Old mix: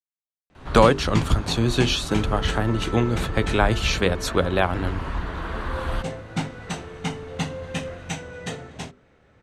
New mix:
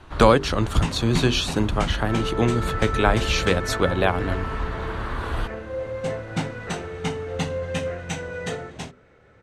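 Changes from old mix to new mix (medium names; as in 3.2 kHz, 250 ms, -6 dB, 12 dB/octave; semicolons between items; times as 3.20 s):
speech: entry -0.55 s; second sound +6.5 dB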